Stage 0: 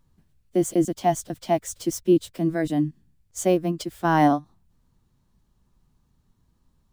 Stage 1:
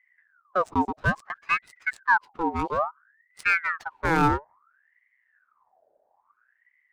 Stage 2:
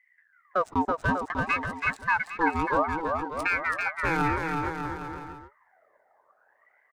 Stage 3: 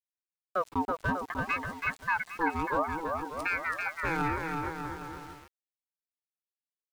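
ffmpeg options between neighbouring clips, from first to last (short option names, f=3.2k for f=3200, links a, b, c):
-af "adynamicsmooth=sensitivity=5:basefreq=750,aeval=exprs='val(0)*sin(2*PI*1300*n/s+1300*0.55/0.59*sin(2*PI*0.59*n/s))':c=same"
-af "alimiter=limit=-15dB:level=0:latency=1:release=196,aecho=1:1:330|594|805.2|974.2|1109:0.631|0.398|0.251|0.158|0.1"
-af "aeval=exprs='val(0)*gte(abs(val(0)),0.00668)':c=same,volume=-4.5dB"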